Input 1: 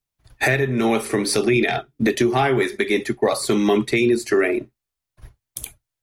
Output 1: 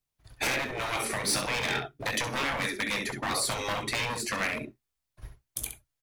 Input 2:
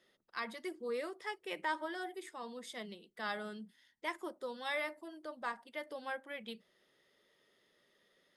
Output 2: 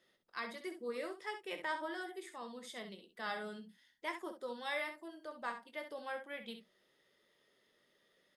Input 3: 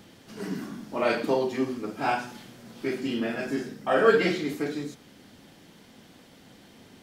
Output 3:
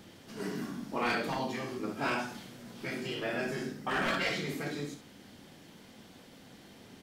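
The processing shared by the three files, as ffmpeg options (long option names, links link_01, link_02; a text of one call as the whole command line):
ffmpeg -i in.wav -af "aecho=1:1:21|66:0.299|0.355,asoftclip=type=hard:threshold=-18dB,afftfilt=real='re*lt(hypot(re,im),0.251)':imag='im*lt(hypot(re,im),0.251)':win_size=1024:overlap=0.75,volume=-2dB" out.wav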